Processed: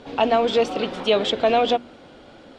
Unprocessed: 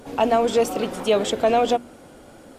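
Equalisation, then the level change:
low-pass with resonance 3,800 Hz, resonance Q 1.9
low-shelf EQ 160 Hz −3 dB
0.0 dB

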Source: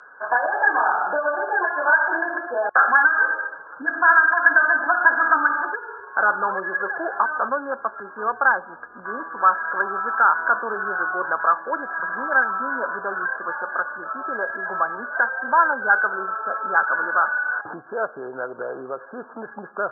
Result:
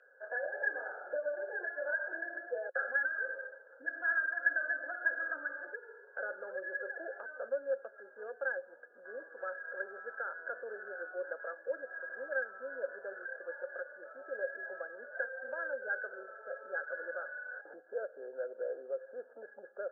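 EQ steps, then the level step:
high-pass filter 260 Hz
dynamic equaliser 850 Hz, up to −6 dB, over −32 dBFS, Q 2
formant filter e
−2.5 dB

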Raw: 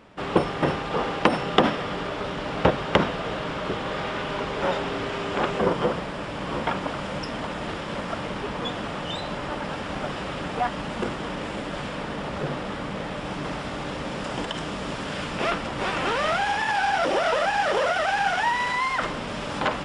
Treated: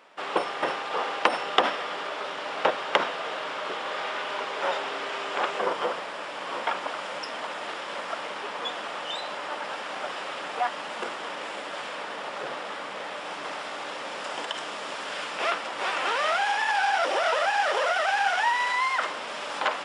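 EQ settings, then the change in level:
high-pass filter 600 Hz 12 dB per octave
0.0 dB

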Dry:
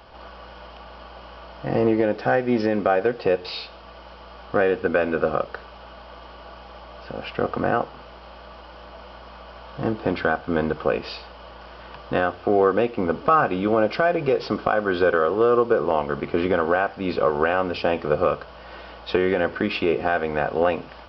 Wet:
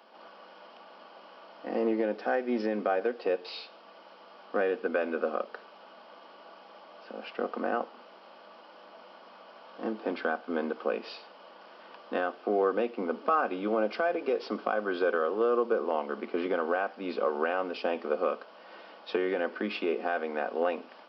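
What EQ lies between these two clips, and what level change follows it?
elliptic high-pass filter 210 Hz, stop band 40 dB
−8.0 dB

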